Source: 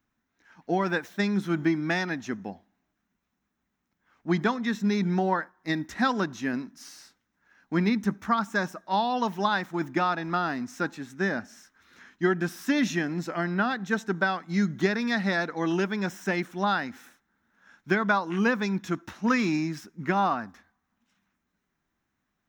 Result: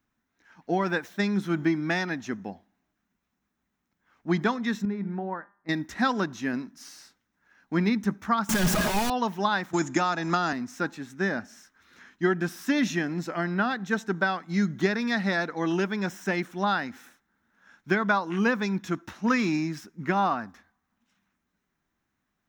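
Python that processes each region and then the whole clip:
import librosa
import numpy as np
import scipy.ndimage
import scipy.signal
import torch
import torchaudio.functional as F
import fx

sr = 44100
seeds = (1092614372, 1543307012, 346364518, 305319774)

y = fx.chain(x, sr, fx.lowpass(hz=1600.0, slope=12),
    fx.comb_fb(f0_hz=200.0, decay_s=0.5, harmonics='all', damping=0.0, mix_pct=60), at=(4.85, 5.69))
y = fx.chain(y, sr, fx.clip_1bit(),
    fx.low_shelf(hz=180.0, db=11.5),
    fx.comb(ms=4.8, depth=0.48), at=(8.49, 9.1))
y = fx.chain(y, sr, fx.lowpass_res(hz=7000.0, q=12.0),
    fx.band_squash(depth_pct=100), at=(9.73, 10.53))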